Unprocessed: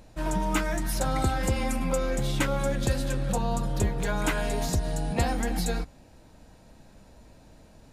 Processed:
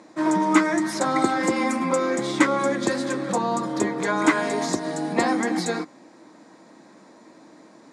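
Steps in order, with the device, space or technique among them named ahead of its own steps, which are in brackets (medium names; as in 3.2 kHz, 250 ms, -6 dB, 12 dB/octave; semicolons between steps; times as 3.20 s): television speaker (cabinet simulation 200–8500 Hz, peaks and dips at 320 Hz +10 dB, 1.1 kHz +9 dB, 2 kHz +7 dB, 2.8 kHz -8 dB); trim +4.5 dB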